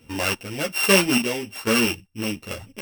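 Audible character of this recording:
a buzz of ramps at a fixed pitch in blocks of 16 samples
chopped level 1.2 Hz, depth 60%, duty 40%
a shimmering, thickened sound

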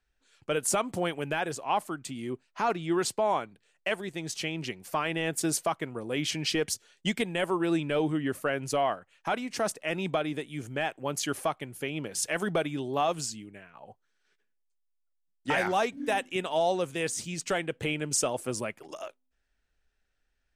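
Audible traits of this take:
background noise floor −76 dBFS
spectral slope −3.5 dB per octave

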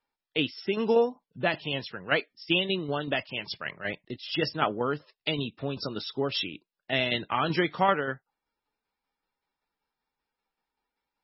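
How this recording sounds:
tremolo saw down 5.2 Hz, depth 50%
MP3

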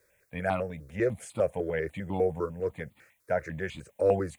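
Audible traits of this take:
a quantiser's noise floor 12 bits, dither triangular
notches that jump at a steady rate 10 Hz 780–1,600 Hz

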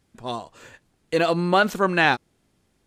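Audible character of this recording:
background noise floor −68 dBFS
spectral slope −3.0 dB per octave

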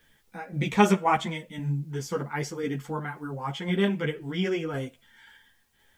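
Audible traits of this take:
a quantiser's noise floor 12 bits, dither triangular
tremolo saw down 1.9 Hz, depth 35%
a shimmering, thickened sound

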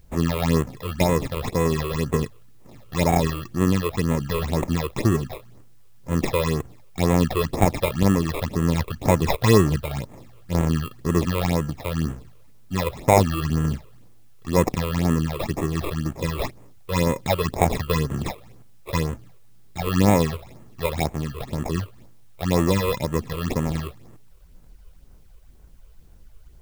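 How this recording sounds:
aliases and images of a low sample rate 1,500 Hz, jitter 0%
phaser sweep stages 8, 2 Hz, lowest notch 220–4,700 Hz
a quantiser's noise floor 12 bits, dither triangular

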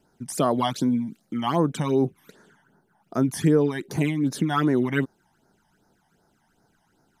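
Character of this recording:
phaser sweep stages 12, 2.6 Hz, lowest notch 410–3,000 Hz

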